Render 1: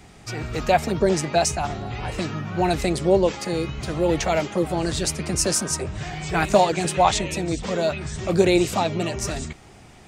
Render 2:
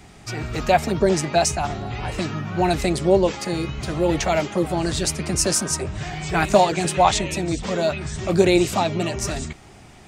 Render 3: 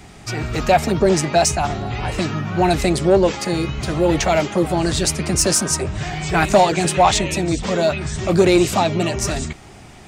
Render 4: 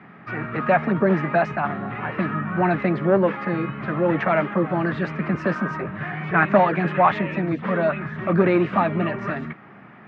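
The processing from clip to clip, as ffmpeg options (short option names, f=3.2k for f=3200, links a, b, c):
-af "bandreject=f=490:w=12,volume=1.5dB"
-af "acontrast=76,volume=-2.5dB"
-af "highpass=f=140:w=0.5412,highpass=f=140:w=1.3066,equalizer=f=200:t=q:w=4:g=4,equalizer=f=380:t=q:w=4:g=-4,equalizer=f=760:t=q:w=4:g=-4,equalizer=f=1.2k:t=q:w=4:g=7,equalizer=f=1.7k:t=q:w=4:g=6,lowpass=f=2.2k:w=0.5412,lowpass=f=2.2k:w=1.3066,volume=-2.5dB"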